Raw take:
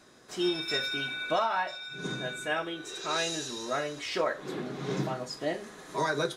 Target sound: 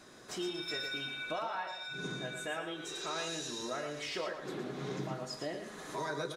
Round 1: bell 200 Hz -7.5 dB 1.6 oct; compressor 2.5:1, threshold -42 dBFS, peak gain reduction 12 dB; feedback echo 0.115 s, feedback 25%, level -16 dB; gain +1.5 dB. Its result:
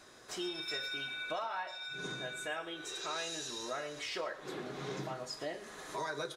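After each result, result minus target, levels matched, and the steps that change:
echo-to-direct -9 dB; 250 Hz band -3.0 dB
change: feedback echo 0.115 s, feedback 25%, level -7 dB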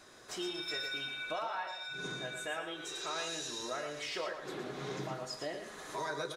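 250 Hz band -3.0 dB
remove: bell 200 Hz -7.5 dB 1.6 oct

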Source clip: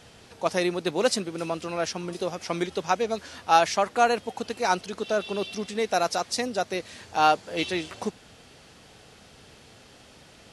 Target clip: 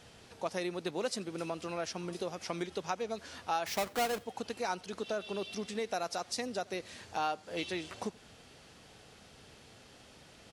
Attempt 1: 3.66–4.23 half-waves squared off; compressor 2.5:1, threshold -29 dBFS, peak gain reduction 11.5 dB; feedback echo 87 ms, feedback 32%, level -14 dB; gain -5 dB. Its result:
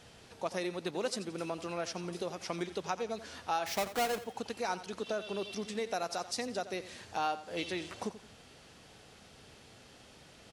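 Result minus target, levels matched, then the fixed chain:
echo-to-direct +11.5 dB
3.66–4.23 half-waves squared off; compressor 2.5:1, threshold -29 dBFS, peak gain reduction 11.5 dB; feedback echo 87 ms, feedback 32%, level -25.5 dB; gain -5 dB

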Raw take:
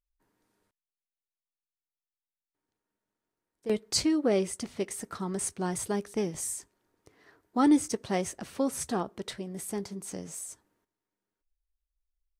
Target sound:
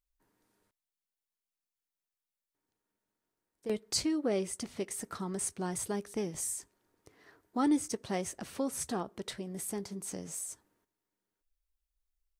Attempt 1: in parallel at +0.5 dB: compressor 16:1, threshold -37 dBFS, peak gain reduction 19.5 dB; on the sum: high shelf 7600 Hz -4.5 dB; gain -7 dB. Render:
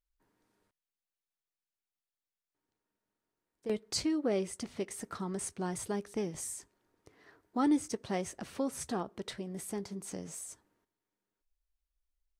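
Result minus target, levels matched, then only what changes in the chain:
8000 Hz band -3.5 dB
change: high shelf 7600 Hz +3.5 dB

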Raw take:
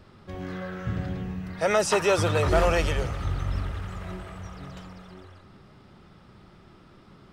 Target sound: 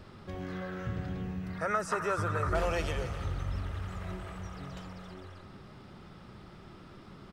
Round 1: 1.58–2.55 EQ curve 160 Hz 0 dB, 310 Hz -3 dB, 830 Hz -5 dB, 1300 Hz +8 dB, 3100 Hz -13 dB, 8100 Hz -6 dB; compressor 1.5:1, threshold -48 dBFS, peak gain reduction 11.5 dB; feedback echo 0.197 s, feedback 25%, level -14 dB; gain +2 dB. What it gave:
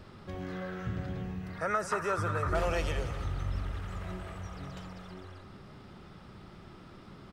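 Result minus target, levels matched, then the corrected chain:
echo 73 ms early
1.58–2.55 EQ curve 160 Hz 0 dB, 310 Hz -3 dB, 830 Hz -5 dB, 1300 Hz +8 dB, 3100 Hz -13 dB, 8100 Hz -6 dB; compressor 1.5:1, threshold -48 dBFS, peak gain reduction 11.5 dB; feedback echo 0.27 s, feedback 25%, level -14 dB; gain +2 dB

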